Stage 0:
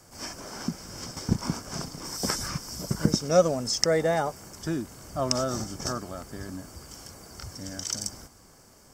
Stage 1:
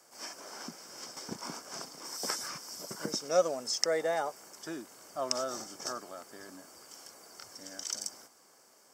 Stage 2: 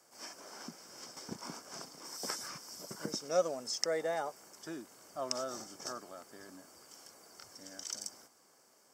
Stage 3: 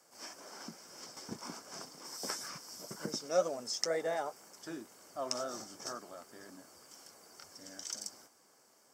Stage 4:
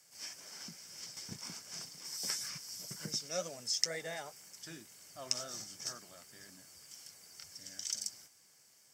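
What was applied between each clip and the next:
high-pass 400 Hz 12 dB/octave; trim -5 dB
bass shelf 250 Hz +4 dB; trim -4.5 dB
flange 2 Hz, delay 3.3 ms, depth 8.4 ms, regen -55%; trim +4 dB
high-order bell 560 Hz -13 dB 3 oct; trim +3.5 dB

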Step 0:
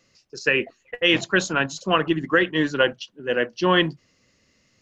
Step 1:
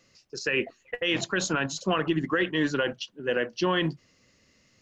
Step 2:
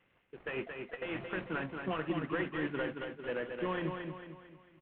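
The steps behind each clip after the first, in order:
peak limiter -15.5 dBFS, peak gain reduction 10.5 dB
CVSD coder 16 kbps; feedback delay 224 ms, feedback 44%, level -5.5 dB; trim -9 dB

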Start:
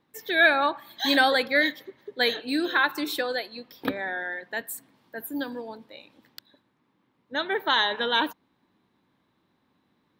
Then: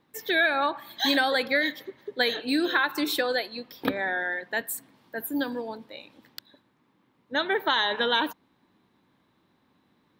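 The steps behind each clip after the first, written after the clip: compression 6:1, threshold -23 dBFS, peak gain reduction 9 dB; trim +3 dB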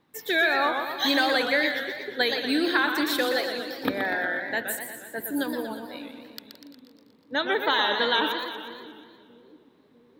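two-band feedback delay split 390 Hz, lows 649 ms, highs 170 ms, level -14.5 dB; modulated delay 120 ms, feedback 62%, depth 166 cents, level -7 dB

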